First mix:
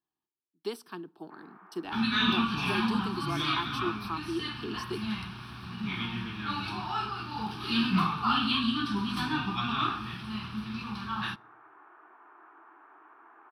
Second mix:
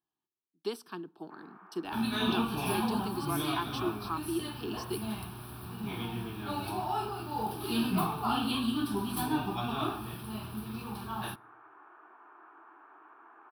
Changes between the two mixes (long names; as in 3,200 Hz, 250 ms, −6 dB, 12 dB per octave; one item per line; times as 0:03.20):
second sound: remove drawn EQ curve 120 Hz 0 dB, 200 Hz +5 dB, 590 Hz −15 dB, 1,200 Hz +8 dB, 5,700 Hz +6 dB, 9,700 Hz −13 dB, 15,000 Hz −23 dB
master: add parametric band 2,000 Hz −6.5 dB 0.21 octaves